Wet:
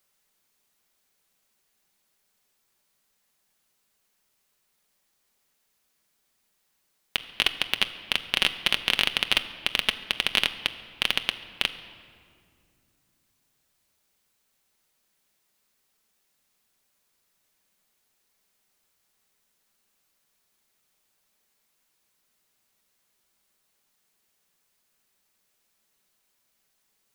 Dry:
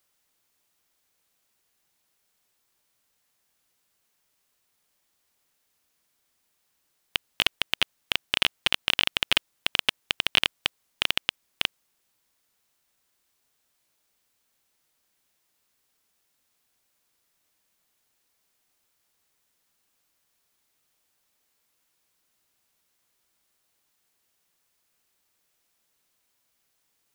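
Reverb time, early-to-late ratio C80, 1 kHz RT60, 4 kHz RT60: 2.3 s, 13.5 dB, 2.0 s, 1.4 s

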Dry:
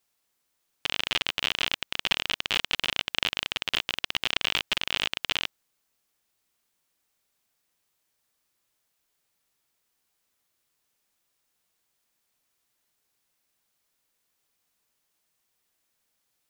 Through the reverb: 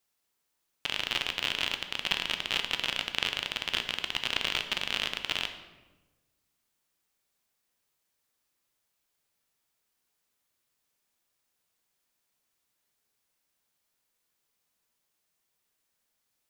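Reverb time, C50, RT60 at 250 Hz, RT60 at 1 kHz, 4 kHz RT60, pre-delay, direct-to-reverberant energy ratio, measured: 1.2 s, 9.5 dB, 1.4 s, 1.1 s, 0.80 s, 10 ms, 6.5 dB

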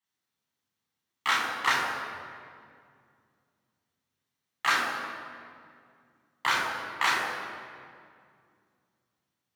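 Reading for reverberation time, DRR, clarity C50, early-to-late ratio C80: 2.2 s, −4.0 dB, 1.0 dB, 2.5 dB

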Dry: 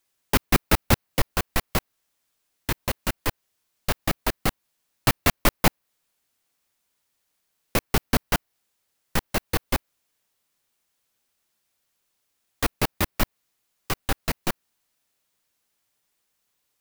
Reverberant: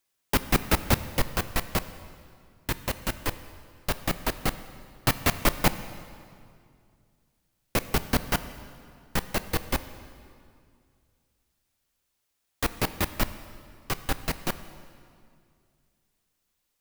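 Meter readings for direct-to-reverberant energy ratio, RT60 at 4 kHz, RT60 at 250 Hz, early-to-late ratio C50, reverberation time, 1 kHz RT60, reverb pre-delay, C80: 12.0 dB, 1.9 s, 2.6 s, 13.0 dB, 2.3 s, 2.2 s, 9 ms, 14.0 dB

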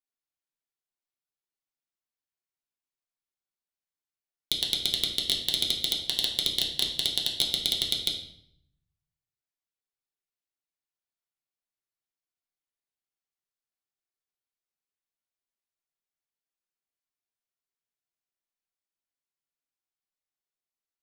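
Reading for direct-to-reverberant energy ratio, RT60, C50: −2.0 dB, 0.65 s, 6.5 dB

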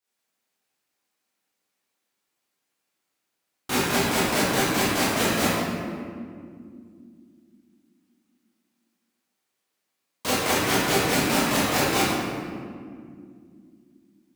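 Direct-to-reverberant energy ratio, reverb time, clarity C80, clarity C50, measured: −11.5 dB, 2.3 s, −1.0 dB, −4.0 dB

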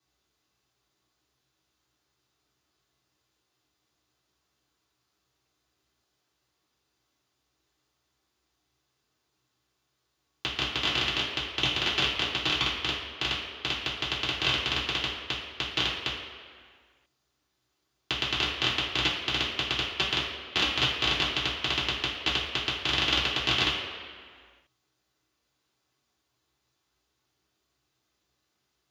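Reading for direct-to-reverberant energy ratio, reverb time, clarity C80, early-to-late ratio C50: −8.5 dB, 1.9 s, 5.0 dB, 3.0 dB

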